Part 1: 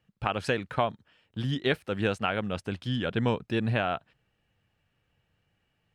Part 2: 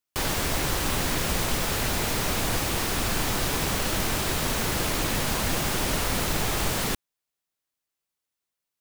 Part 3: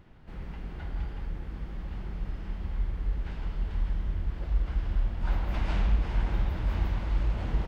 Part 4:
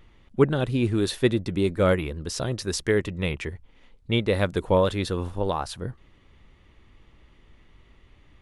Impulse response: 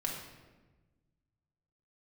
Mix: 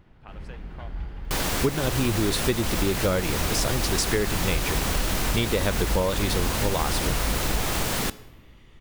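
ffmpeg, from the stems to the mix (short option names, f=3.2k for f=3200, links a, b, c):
-filter_complex "[0:a]volume=-19dB[a];[1:a]bandreject=f=430.3:t=h:w=4,bandreject=f=860.6:t=h:w=4,bandreject=f=1.2909k:t=h:w=4,bandreject=f=1.7212k:t=h:w=4,bandreject=f=2.1515k:t=h:w=4,bandreject=f=2.5818k:t=h:w=4,bandreject=f=3.0121k:t=h:w=4,bandreject=f=3.4424k:t=h:w=4,bandreject=f=3.8727k:t=h:w=4,bandreject=f=4.303k:t=h:w=4,bandreject=f=4.7333k:t=h:w=4,bandreject=f=5.1636k:t=h:w=4,bandreject=f=5.5939k:t=h:w=4,bandreject=f=6.0242k:t=h:w=4,bandreject=f=6.4545k:t=h:w=4,bandreject=f=6.8848k:t=h:w=4,bandreject=f=7.3151k:t=h:w=4,bandreject=f=7.7454k:t=h:w=4,bandreject=f=8.1757k:t=h:w=4,bandreject=f=8.606k:t=h:w=4,bandreject=f=9.0363k:t=h:w=4,bandreject=f=9.4666k:t=h:w=4,bandreject=f=9.8969k:t=h:w=4,bandreject=f=10.3272k:t=h:w=4,bandreject=f=10.7575k:t=h:w=4,bandreject=f=11.1878k:t=h:w=4,bandreject=f=11.6181k:t=h:w=4,bandreject=f=12.0484k:t=h:w=4,bandreject=f=12.4787k:t=h:w=4,bandreject=f=12.909k:t=h:w=4,bandreject=f=13.3393k:t=h:w=4,bandreject=f=13.7696k:t=h:w=4,bandreject=f=14.1999k:t=h:w=4,bandreject=f=14.6302k:t=h:w=4,bandreject=f=15.0605k:t=h:w=4,bandreject=f=15.4908k:t=h:w=4,bandreject=f=15.9211k:t=h:w=4,bandreject=f=16.3514k:t=h:w=4,bandreject=f=16.7817k:t=h:w=4,adelay=1150,volume=0dB,asplit=2[b][c];[c]volume=-17.5dB[d];[2:a]volume=0dB[e];[3:a]highshelf=f=4.1k:g=6.5,adelay=1250,volume=2.5dB[f];[4:a]atrim=start_sample=2205[g];[d][g]afir=irnorm=-1:irlink=0[h];[a][b][e][f][h]amix=inputs=5:normalize=0,acompressor=threshold=-19dB:ratio=10"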